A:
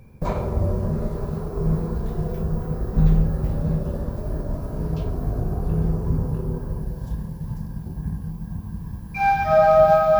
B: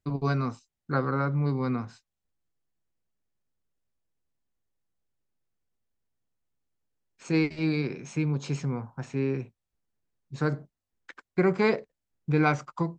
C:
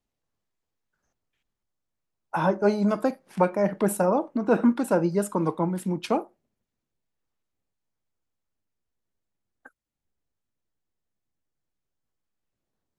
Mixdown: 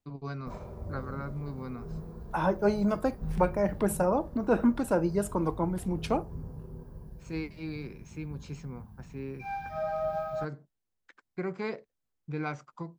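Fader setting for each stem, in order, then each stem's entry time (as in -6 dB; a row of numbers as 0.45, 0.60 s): -17.5, -11.0, -4.0 dB; 0.25, 0.00, 0.00 s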